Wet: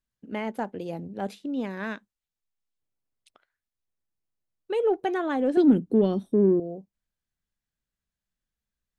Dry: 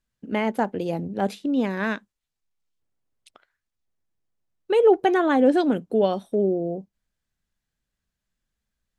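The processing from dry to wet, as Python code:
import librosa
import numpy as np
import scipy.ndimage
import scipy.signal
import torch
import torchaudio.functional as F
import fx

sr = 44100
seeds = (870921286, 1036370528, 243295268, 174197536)

p1 = fx.low_shelf_res(x, sr, hz=450.0, db=10.5, q=1.5, at=(5.57, 6.6))
p2 = 10.0 ** (-13.0 / 20.0) * np.tanh(p1 / 10.0 ** (-13.0 / 20.0))
p3 = p1 + (p2 * librosa.db_to_amplitude(-11.5))
y = p3 * librosa.db_to_amplitude(-9.0)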